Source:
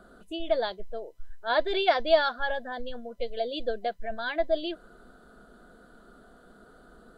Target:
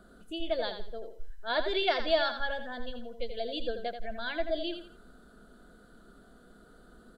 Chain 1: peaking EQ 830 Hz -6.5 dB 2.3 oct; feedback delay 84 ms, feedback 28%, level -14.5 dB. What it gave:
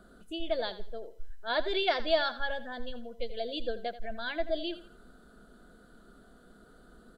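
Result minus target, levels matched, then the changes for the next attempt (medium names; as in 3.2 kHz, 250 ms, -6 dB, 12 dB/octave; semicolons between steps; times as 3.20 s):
echo-to-direct -6 dB
change: feedback delay 84 ms, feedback 28%, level -8.5 dB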